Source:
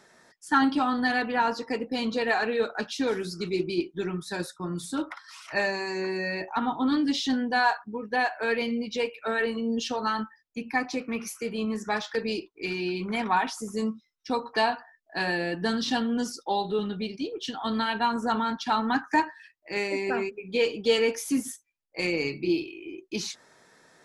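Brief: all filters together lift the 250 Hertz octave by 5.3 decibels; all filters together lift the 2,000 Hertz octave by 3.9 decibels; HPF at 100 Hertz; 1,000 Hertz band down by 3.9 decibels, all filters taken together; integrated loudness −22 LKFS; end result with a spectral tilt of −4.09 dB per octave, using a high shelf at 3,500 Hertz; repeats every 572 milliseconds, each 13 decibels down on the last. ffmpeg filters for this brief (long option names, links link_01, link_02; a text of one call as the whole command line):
ffmpeg -i in.wav -af "highpass=100,equalizer=frequency=250:width_type=o:gain=6.5,equalizer=frequency=1000:width_type=o:gain=-7.5,equalizer=frequency=2000:width_type=o:gain=6,highshelf=frequency=3500:gain=4,aecho=1:1:572|1144|1716:0.224|0.0493|0.0108,volume=3dB" out.wav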